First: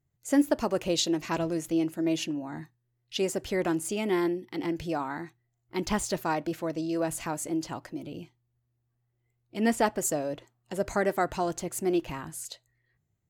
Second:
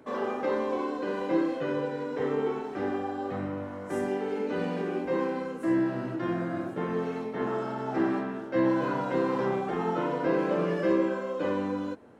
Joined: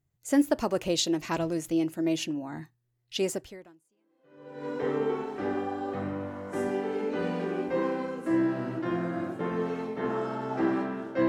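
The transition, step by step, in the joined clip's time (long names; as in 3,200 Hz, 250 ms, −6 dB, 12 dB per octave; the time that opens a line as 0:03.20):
first
0:04.01: continue with second from 0:01.38, crossfade 1.34 s exponential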